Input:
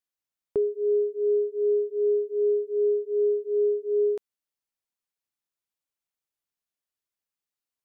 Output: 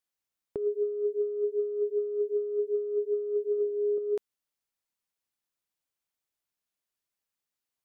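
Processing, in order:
0:03.57–0:03.98: hum removal 51.89 Hz, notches 38
compressor whose output falls as the input rises −26 dBFS, ratio −0.5
level −1.5 dB

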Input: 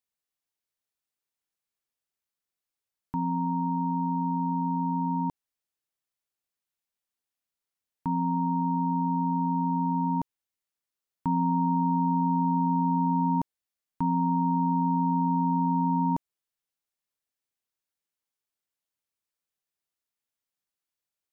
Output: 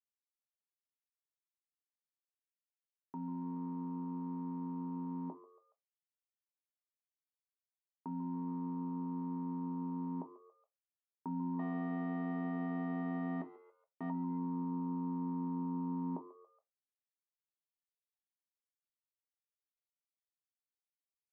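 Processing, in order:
0:11.59–0:14.10: lower of the sound and its delayed copy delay 0.41 ms
dead-zone distortion −53.5 dBFS
four-pole ladder band-pass 490 Hz, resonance 35%
echo with shifted repeats 140 ms, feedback 42%, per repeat +93 Hz, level −18.5 dB
convolution reverb RT60 0.20 s, pre-delay 5 ms, DRR 5.5 dB
level +4 dB

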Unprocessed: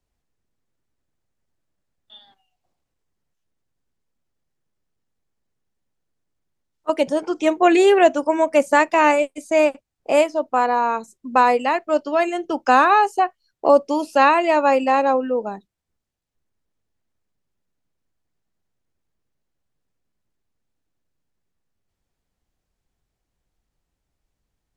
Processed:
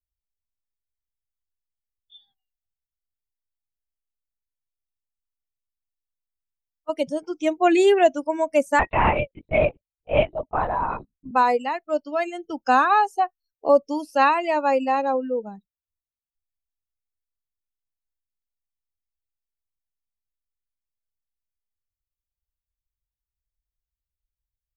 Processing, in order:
spectral dynamics exaggerated over time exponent 1.5
0:08.79–0:11.31: linear-prediction vocoder at 8 kHz whisper
level −1.5 dB

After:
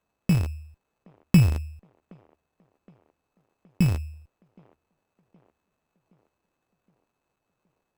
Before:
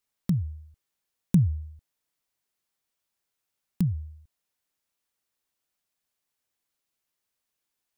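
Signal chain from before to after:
loose part that buzzes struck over −30 dBFS, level −24 dBFS
decimation without filtering 17×
delay with a band-pass on its return 769 ms, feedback 57%, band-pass 630 Hz, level −20 dB
windowed peak hold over 9 samples
level +4 dB

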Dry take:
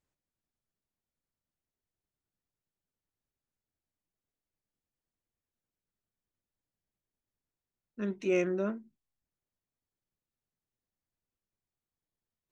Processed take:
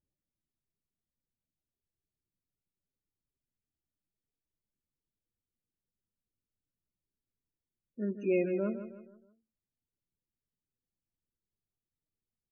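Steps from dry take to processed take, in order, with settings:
parametric band 1,600 Hz −2.5 dB 1.9 octaves
spectral peaks only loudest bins 16
repeating echo 158 ms, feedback 40%, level −11 dB

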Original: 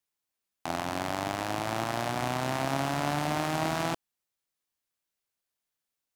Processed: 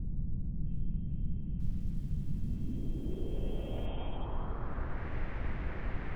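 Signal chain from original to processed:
vocoder with an arpeggio as carrier bare fifth, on E3, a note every 92 ms
rotating-speaker cabinet horn 5 Hz
four-comb reverb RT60 1.1 s, combs from 31 ms, DRR 2.5 dB
voice inversion scrambler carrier 3,400 Hz
tilt shelving filter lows −5.5 dB
brickwall limiter −25.5 dBFS, peak gain reduction 10.5 dB
background noise brown −36 dBFS
low-pass filter sweep 170 Hz → 2,000 Hz, 0:02.28–0:05.15
0:01.27–0:03.86: feedback echo at a low word length 328 ms, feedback 35%, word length 10 bits, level −8.5 dB
level +2.5 dB

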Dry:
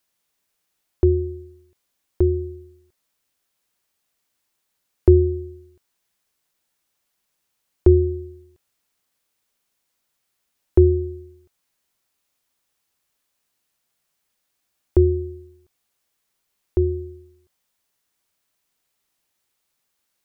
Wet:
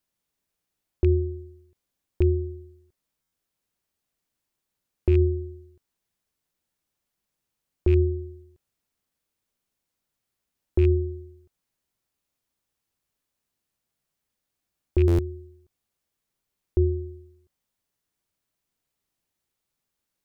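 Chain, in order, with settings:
loose part that buzzes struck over −12 dBFS, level −14 dBFS
low-shelf EQ 410 Hz +9.5 dB
brickwall limiter −3 dBFS, peak gain reduction 8.5 dB
buffer that repeats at 0:03.21/0:15.07, samples 512, times 9
level −8.5 dB

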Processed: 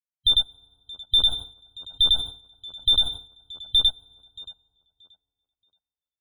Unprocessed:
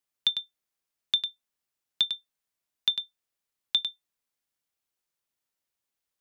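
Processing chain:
parametric band 2,100 Hz −6.5 dB 2.2 octaves
hum removal 88.82 Hz, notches 17
transient designer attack +10 dB, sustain −3 dB
fuzz pedal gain 45 dB, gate −54 dBFS
spectral peaks only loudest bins 64
high-frequency loss of the air 420 metres
tape delay 628 ms, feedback 28%, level −16 dB, low-pass 3,000 Hz
feedback delay network reverb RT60 1.9 s, low-frequency decay 1.25×, high-frequency decay 0.65×, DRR 20 dB
0:01.16–0:03.79: level that may fall only so fast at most 130 dB per second
level +8.5 dB

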